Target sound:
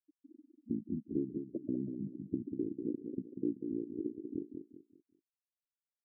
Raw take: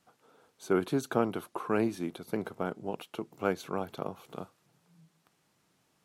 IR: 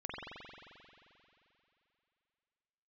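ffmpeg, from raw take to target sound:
-af "acompressor=threshold=-47dB:ratio=3,lowpass=frequency=550:width_type=q:width=4.9,asetrate=26222,aresample=44100,atempo=1.68179,lowshelf=frequency=200:gain=-9.5,afftfilt=real='re*gte(hypot(re,im),0.0126)':imag='im*gte(hypot(re,im),0.0126)':win_size=1024:overlap=0.75,aecho=1:1:192|384|576|768:0.473|0.156|0.0515|0.017,volume=6dB"

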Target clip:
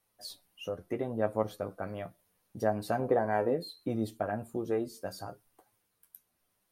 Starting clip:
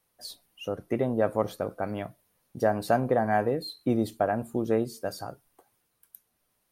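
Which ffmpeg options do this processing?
ffmpeg -i in.wav -filter_complex "[0:a]asettb=1/sr,asplit=3[link_01][link_02][link_03];[link_01]atrim=end=2.994[link_04];[link_02]atrim=start=2.99:end=3.7,asetpts=PTS-STARTPTS,afade=type=in:duration=0.004:curve=qsin,afade=type=out:start_time=0.706:duration=0.004:curve=qsin,equalizer=frequency=460:width=0.42:gain=6[link_05];[link_03]atrim=start=3.696[link_06];[link_04][link_05]acrossfade=duration=0.004:curve1=hsin:curve2=qsin[link_07];[link_07][link_06]acrossfade=duration=0.004:curve1=qsin:curve2=hsin,asplit=2[link_08][link_09];[link_09]acompressor=threshold=-36dB:ratio=6,volume=-2dB[link_10];[link_08][link_10]amix=inputs=2:normalize=0,flanger=delay=9.2:depth=2.5:regen=31:speed=0.72:shape=sinusoidal,volume=-4dB" out.wav

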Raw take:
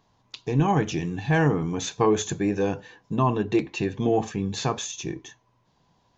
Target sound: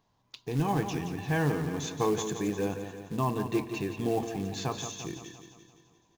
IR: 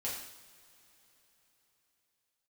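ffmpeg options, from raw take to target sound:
-filter_complex "[0:a]acrusher=bits=5:mode=log:mix=0:aa=0.000001,aecho=1:1:173|346|519|692|865|1038|1211:0.355|0.199|0.111|0.0623|0.0349|0.0195|0.0109,asplit=2[link_01][link_02];[1:a]atrim=start_sample=2205,adelay=131[link_03];[link_02][link_03]afir=irnorm=-1:irlink=0,volume=-19.5dB[link_04];[link_01][link_04]amix=inputs=2:normalize=0,volume=-7dB"

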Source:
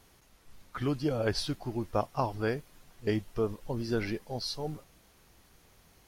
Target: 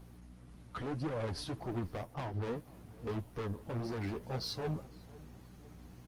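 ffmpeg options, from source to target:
ffmpeg -i in.wav -filter_complex "[0:a]highpass=frequency=43:width=0.5412,highpass=frequency=43:width=1.3066,tiltshelf=frequency=1300:gain=4.5,aeval=exprs='val(0)+0.00282*(sin(2*PI*60*n/s)+sin(2*PI*2*60*n/s)/2+sin(2*PI*3*60*n/s)/3+sin(2*PI*4*60*n/s)/4+sin(2*PI*5*60*n/s)/5)':channel_layout=same,acrossover=split=7400[link_01][link_02];[link_01]alimiter=limit=-20dB:level=0:latency=1:release=297[link_03];[link_03][link_02]amix=inputs=2:normalize=0,asettb=1/sr,asplit=3[link_04][link_05][link_06];[link_04]atrim=end=2.144[link_07];[link_05]atrim=start=2.14:end=2.55,asetpts=PTS-STARTPTS,afade=type=in:duration=0.004:curve=qsin,afade=type=out:start_time=0.406:duration=0.004:curve=qsin,highshelf=frequency=5700:gain=-11.5[link_08];[link_06]atrim=start=2.546[link_09];[link_07][link_08]acrossfade=duration=0.004:curve1=hsin:curve2=qsin[link_10];[link_10][link_09]acrossfade=duration=0.004:curve1=qsin:curve2=hsin,volume=35dB,asoftclip=hard,volume=-35dB,flanger=delay=4.8:depth=8.6:regen=26:speed=1.8:shape=triangular,asplit=2[link_11][link_12];[link_12]adelay=503,lowpass=frequency=1800:poles=1,volume=-20dB,asplit=2[link_13][link_14];[link_14]adelay=503,lowpass=frequency=1800:poles=1,volume=0.52,asplit=2[link_15][link_16];[link_16]adelay=503,lowpass=frequency=1800:poles=1,volume=0.52,asplit=2[link_17][link_18];[link_18]adelay=503,lowpass=frequency=1800:poles=1,volume=0.52[link_19];[link_13][link_15][link_17][link_19]amix=inputs=4:normalize=0[link_20];[link_11][link_20]amix=inputs=2:normalize=0,volume=3.5dB" -ar 48000 -c:a libopus -b:a 32k out.opus

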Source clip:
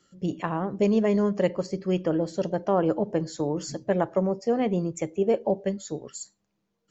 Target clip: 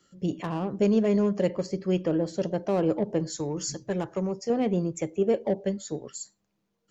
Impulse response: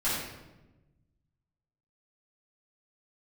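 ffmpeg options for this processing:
-filter_complex "[0:a]asettb=1/sr,asplit=3[link_01][link_02][link_03];[link_01]atrim=end=3.304[link_04];[link_02]atrim=start=3.3:end=4.5,asetpts=PTS-STARTPTS,afade=type=in:duration=0.004:curve=qsin,afade=type=out:start_time=1.196:duration=0.004:curve=qsin,equalizer=frequency=250:width_type=o:width=0.67:gain=-6,equalizer=frequency=630:width_type=o:width=0.67:gain=-8,equalizer=frequency=6300:width_type=o:width=0.67:gain=7[link_05];[link_03]atrim=start=4.496[link_06];[link_04][link_05]acrossfade=duration=0.004:curve1=hsin:curve2=qsin[link_07];[link_07][link_06]acrossfade=duration=0.004:curve1=qsin:curve2=hsin,acrossover=split=610|2600[link_08][link_09][link_10];[link_09]asoftclip=type=tanh:threshold=-34.5dB[link_11];[link_08][link_11][link_10]amix=inputs=3:normalize=0"

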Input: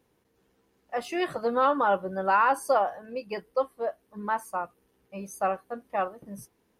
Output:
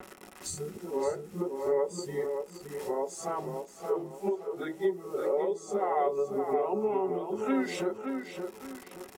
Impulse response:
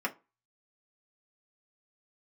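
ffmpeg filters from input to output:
-filter_complex "[0:a]areverse,equalizer=frequency=520:width=2:gain=12,acrusher=bits=9:mix=0:aa=0.000001,acompressor=mode=upward:threshold=-37dB:ratio=2.5,asetrate=32667,aresample=44100,acompressor=threshold=-30dB:ratio=16,asplit=2[link_01][link_02];[link_02]adelay=572,lowpass=frequency=3900:poles=1,volume=-6dB,asplit=2[link_03][link_04];[link_04]adelay=572,lowpass=frequency=3900:poles=1,volume=0.35,asplit=2[link_05][link_06];[link_06]adelay=572,lowpass=frequency=3900:poles=1,volume=0.35,asplit=2[link_07][link_08];[link_08]adelay=572,lowpass=frequency=3900:poles=1,volume=0.35[link_09];[link_01][link_03][link_05][link_07][link_09]amix=inputs=5:normalize=0,asplit=2[link_10][link_11];[1:a]atrim=start_sample=2205[link_12];[link_11][link_12]afir=irnorm=-1:irlink=0,volume=-5.5dB[link_13];[link_10][link_13]amix=inputs=2:normalize=0,adynamicequalizer=threshold=0.00251:dfrequency=3600:dqfactor=0.7:tfrequency=3600:tqfactor=0.7:attack=5:release=100:ratio=0.375:range=2.5:mode=boostabove:tftype=highshelf"

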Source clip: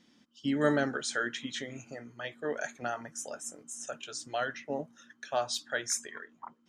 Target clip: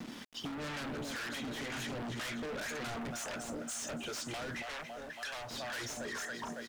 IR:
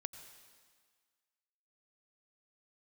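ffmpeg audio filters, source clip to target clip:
-filter_complex "[0:a]aecho=1:1:278|556|834|1112:0.168|0.0823|0.0403|0.0198,acrossover=split=140[link_01][link_02];[link_02]acompressor=threshold=-32dB:ratio=6[link_03];[link_01][link_03]amix=inputs=2:normalize=0,asplit=2[link_04][link_05];[link_05]aeval=exprs='0.0668*sin(PI/2*8.91*val(0)/0.0668)':channel_layout=same,volume=-11dB[link_06];[link_04][link_06]amix=inputs=2:normalize=0,acrossover=split=850[link_07][link_08];[link_07]aeval=exprs='val(0)*(1-0.7/2+0.7/2*cos(2*PI*2*n/s))':channel_layout=same[link_09];[link_08]aeval=exprs='val(0)*(1-0.7/2-0.7/2*cos(2*PI*2*n/s))':channel_layout=same[link_10];[link_09][link_10]amix=inputs=2:normalize=0,asettb=1/sr,asplit=3[link_11][link_12][link_13];[link_11]atrim=end=1.724[link_14];[link_12]atrim=start=1.72:end=3.11,asetpts=PTS-STARTPTS,afade=type=in:duration=0.004:curve=qsin,afade=type=out:start_time=1.386:duration=0.004:curve=qsin,aeval=exprs='0.0631*(cos(1*acos(clip(val(0)/0.0631,-1,1)))-cos(1*PI/2))+0.0126*(cos(5*acos(clip(val(0)/0.0631,-1,1)))-cos(5*PI/2))':channel_layout=same[link_15];[link_13]atrim=start=3.106[link_16];[link_14][link_15]acrossfade=duration=0.004:curve1=hsin:curve2=qsin[link_17];[link_17][link_16]acrossfade=duration=0.004:curve1=qsin:curve2=hsin,acrossover=split=400|1200[link_18][link_19][link_20];[link_19]alimiter=level_in=17.5dB:limit=-24dB:level=0:latency=1,volume=-17.5dB[link_21];[link_18][link_21][link_20]amix=inputs=3:normalize=0,acrusher=bits=8:mix=0:aa=0.000001,aemphasis=mode=reproduction:type=50kf,aeval=exprs='0.0447*(cos(1*acos(clip(val(0)/0.0447,-1,1)))-cos(1*PI/2))+0.02*(cos(5*acos(clip(val(0)/0.0447,-1,1)))-cos(5*PI/2))':channel_layout=same,acompressor=threshold=-37dB:ratio=6,asettb=1/sr,asplit=3[link_22][link_23][link_24];[link_22]atrim=end=4.624[link_25];[link_23]atrim=start=4.62:end=5.51,asetpts=PTS-STARTPTS,afade=type=in:duration=0.004:curve=qsin,afade=type=out:start_time=0.886:duration=0.004:curve=qsin,equalizer=frequency=190:width_type=o:width=2.2:gain=-12.5[link_26];[link_24]atrim=start=5.506[link_27];[link_25][link_26]acrossfade=duration=0.004:curve1=hsin:curve2=qsin[link_28];[link_28][link_27]acrossfade=duration=0.004:curve1=qsin:curve2=hsin,volume=-1.5dB"

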